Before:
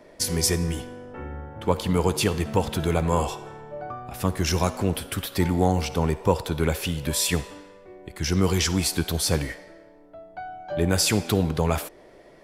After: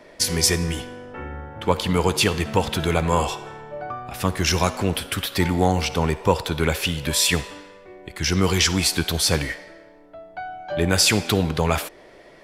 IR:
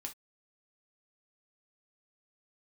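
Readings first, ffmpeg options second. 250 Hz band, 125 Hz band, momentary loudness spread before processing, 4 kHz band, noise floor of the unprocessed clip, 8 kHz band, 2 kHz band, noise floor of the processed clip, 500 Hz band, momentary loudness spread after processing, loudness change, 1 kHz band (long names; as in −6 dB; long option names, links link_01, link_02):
+1.5 dB, +1.0 dB, 16 LU, +6.5 dB, −50 dBFS, +4.0 dB, +7.0 dB, −48 dBFS, +2.0 dB, 16 LU, +3.0 dB, +4.0 dB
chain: -af "equalizer=frequency=2700:width_type=o:width=2.8:gain=6.5,volume=1dB"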